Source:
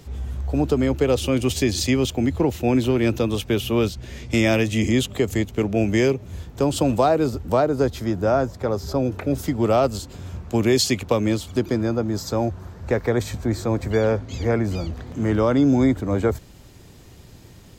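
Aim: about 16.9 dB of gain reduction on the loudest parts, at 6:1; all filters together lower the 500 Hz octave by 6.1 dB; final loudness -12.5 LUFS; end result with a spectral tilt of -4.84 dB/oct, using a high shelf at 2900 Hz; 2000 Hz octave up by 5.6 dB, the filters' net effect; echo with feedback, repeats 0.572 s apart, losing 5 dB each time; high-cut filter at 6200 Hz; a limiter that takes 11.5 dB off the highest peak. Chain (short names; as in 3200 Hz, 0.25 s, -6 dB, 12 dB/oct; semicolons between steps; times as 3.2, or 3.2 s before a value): LPF 6200 Hz; bell 500 Hz -8.5 dB; bell 2000 Hz +4 dB; high shelf 2900 Hz +8 dB; compressor 6:1, threshold -32 dBFS; limiter -29 dBFS; feedback echo 0.572 s, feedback 56%, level -5 dB; gain +24 dB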